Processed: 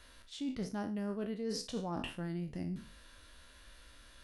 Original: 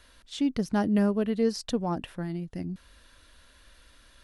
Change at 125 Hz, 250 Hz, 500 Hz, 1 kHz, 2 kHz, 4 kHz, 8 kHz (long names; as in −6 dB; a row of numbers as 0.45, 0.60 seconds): −8.0, −11.5, −11.0, −10.0, −8.0, −5.5, −5.0 decibels